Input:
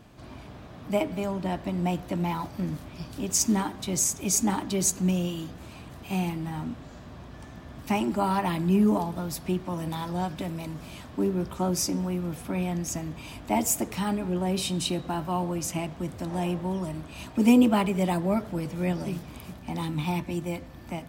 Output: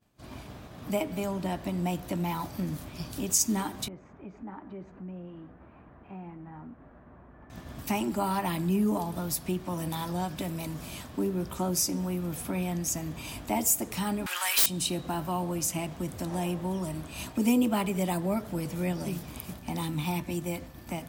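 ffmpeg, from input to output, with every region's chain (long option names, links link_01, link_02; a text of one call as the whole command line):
ffmpeg -i in.wav -filter_complex "[0:a]asettb=1/sr,asplit=3[link_01][link_02][link_03];[link_01]atrim=end=3.884[link_04];[link_02]atrim=start=3.88:end=7.5,asetpts=PTS-STARTPTS,afade=type=in:duration=0.004:curve=qsin,afade=type=out:start_time=3.616:duration=0.004:curve=qsin,lowpass=frequency=1800:width=0.5412,lowpass=frequency=1800:width=1.3066,equalizer=frequency=110:width_type=o:width=1.3:gain=-6,acompressor=threshold=-42dB:ratio=4:attack=3.2:release=140:knee=1:detection=peak[link_05];[link_03]atrim=start=7.496[link_06];[link_04][link_05]acrossfade=duration=0.004:curve1=hsin:curve2=qsin[link_07];[link_07][link_06]acrossfade=duration=0.004:curve1=qsin:curve2=hsin,asettb=1/sr,asplit=3[link_08][link_09][link_10];[link_08]atrim=end=14.264[link_11];[link_09]atrim=start=14.26:end=14.66,asetpts=PTS-STARTPTS,afade=type=in:duration=0.004:curve=qsin,afade=type=out:start_time=0.396:duration=0.004:curve=qsin,highpass=frequency=1300:width=0.5412,highpass=frequency=1300:width=1.3066,aeval=exprs='0.119*sin(PI/2*5.01*val(0)/0.119)':channel_layout=same[link_12];[link_10]atrim=start=14.656[link_13];[link_11][link_12]acrossfade=duration=0.004:curve1=hsin:curve2=qsin[link_14];[link_14][link_13]acrossfade=duration=0.004:curve1=qsin:curve2=hsin,agate=range=-33dB:threshold=-39dB:ratio=3:detection=peak,highshelf=frequency=7100:gain=11.5,acompressor=threshold=-42dB:ratio=1.5,volume=3.5dB" out.wav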